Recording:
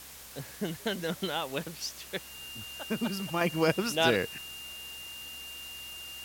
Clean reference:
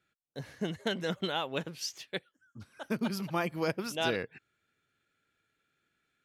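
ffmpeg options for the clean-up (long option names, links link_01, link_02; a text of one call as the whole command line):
ffmpeg -i in.wav -af "bandreject=frequency=65.8:width_type=h:width=4,bandreject=frequency=131.6:width_type=h:width=4,bandreject=frequency=197.4:width_type=h:width=4,bandreject=frequency=263.2:width_type=h:width=4,bandreject=frequency=329:width_type=h:width=4,bandreject=frequency=2800:width=30,afwtdn=0.0045,asetnsamples=nb_out_samples=441:pad=0,asendcmd='3.41 volume volume -5.5dB',volume=0dB" out.wav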